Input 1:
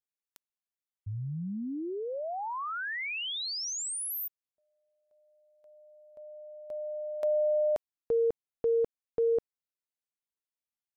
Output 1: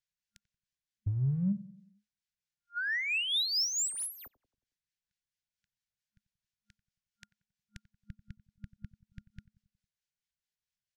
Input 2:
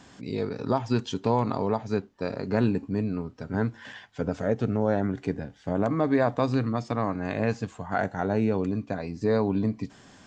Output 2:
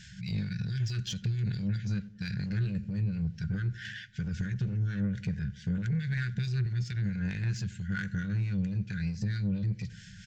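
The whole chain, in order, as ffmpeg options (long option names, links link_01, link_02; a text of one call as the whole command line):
ffmpeg -i in.wav -filter_complex "[0:a]lowshelf=frequency=230:gain=7.5,afftfilt=real='re*(1-between(b*sr/4096,210,1400))':imag='im*(1-between(b*sr/4096,210,1400))':win_size=4096:overlap=0.75,asoftclip=type=tanh:threshold=-20dB,equalizer=frequency=6200:width_type=o:width=1.4:gain=7,acompressor=threshold=-29dB:ratio=12:attack=0.31:release=70:knee=1:detection=peak,acrossover=split=1300[link_01][link_02];[link_01]aeval=exprs='val(0)*(1-0.5/2+0.5/2*cos(2*PI*4.5*n/s))':channel_layout=same[link_03];[link_02]aeval=exprs='val(0)*(1-0.5/2-0.5/2*cos(2*PI*4.5*n/s))':channel_layout=same[link_04];[link_03][link_04]amix=inputs=2:normalize=0,adynamicsmooth=sensitivity=7:basefreq=5800,asplit=2[link_05][link_06];[link_06]adelay=91,lowpass=frequency=990:poles=1,volume=-17dB,asplit=2[link_07][link_08];[link_08]adelay=91,lowpass=frequency=990:poles=1,volume=0.54,asplit=2[link_09][link_10];[link_10]adelay=91,lowpass=frequency=990:poles=1,volume=0.54,asplit=2[link_11][link_12];[link_12]adelay=91,lowpass=frequency=990:poles=1,volume=0.54,asplit=2[link_13][link_14];[link_14]adelay=91,lowpass=frequency=990:poles=1,volume=0.54[link_15];[link_05][link_07][link_09][link_11][link_13][link_15]amix=inputs=6:normalize=0,volume=4.5dB" out.wav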